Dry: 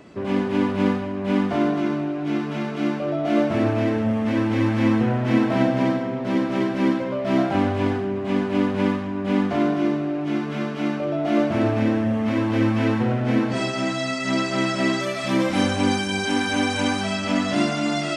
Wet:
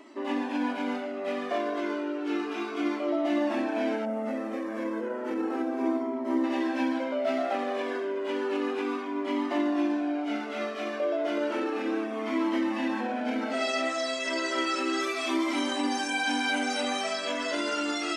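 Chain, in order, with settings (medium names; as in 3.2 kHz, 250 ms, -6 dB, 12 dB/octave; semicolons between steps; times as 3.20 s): 4.05–6.44 s: peaking EQ 3.4 kHz -13 dB 2 oct; peak limiter -15.5 dBFS, peak gain reduction 7.5 dB; brick-wall FIR high-pass 230 Hz; Shepard-style flanger falling 0.32 Hz; trim +2 dB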